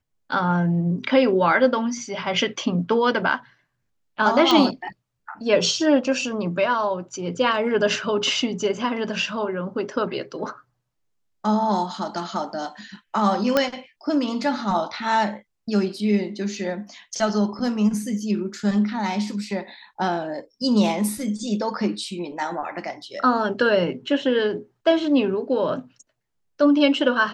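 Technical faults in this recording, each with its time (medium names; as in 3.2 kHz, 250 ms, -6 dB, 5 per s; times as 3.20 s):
4.51 s: pop -6 dBFS
13.57 s: pop -5 dBFS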